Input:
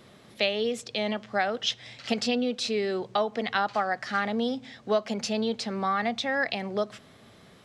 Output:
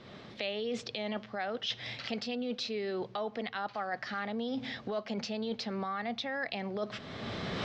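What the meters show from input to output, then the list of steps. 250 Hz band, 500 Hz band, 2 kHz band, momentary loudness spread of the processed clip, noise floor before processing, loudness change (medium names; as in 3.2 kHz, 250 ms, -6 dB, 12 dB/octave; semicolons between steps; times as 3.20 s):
-6.5 dB, -8.0 dB, -8.0 dB, 3 LU, -54 dBFS, -8.0 dB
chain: recorder AGC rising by 36 dB/s; low-pass 5.2 kHz 24 dB/octave; reverse; compression 6:1, threshold -33 dBFS, peak gain reduction 13.5 dB; reverse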